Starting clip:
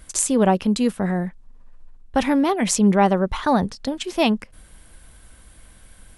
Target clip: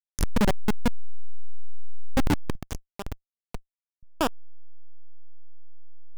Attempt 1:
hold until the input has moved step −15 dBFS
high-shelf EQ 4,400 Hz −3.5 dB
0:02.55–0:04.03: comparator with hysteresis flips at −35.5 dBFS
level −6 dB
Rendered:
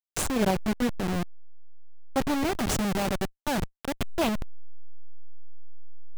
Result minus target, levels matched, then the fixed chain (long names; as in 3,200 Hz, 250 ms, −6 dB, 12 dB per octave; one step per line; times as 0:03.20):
hold until the input has moved: distortion −21 dB
hold until the input has moved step −7 dBFS
high-shelf EQ 4,400 Hz −3.5 dB
0:02.55–0:04.03: comparator with hysteresis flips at −35.5 dBFS
level −6 dB